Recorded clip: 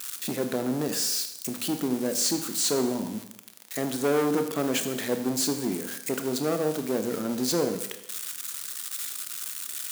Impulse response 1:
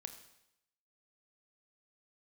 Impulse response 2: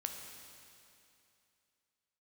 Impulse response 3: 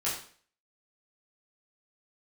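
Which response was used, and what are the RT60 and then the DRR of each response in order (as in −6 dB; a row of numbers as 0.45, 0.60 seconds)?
1; 0.85, 2.7, 0.45 seconds; 7.5, 3.0, −8.5 decibels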